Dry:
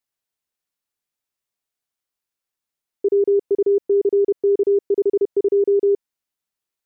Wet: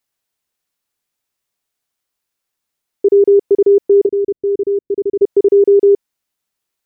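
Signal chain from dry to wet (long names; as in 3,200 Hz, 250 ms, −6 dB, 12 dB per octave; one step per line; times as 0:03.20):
0:04.06–0:05.22: Gaussian smoothing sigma 22 samples
level +7.5 dB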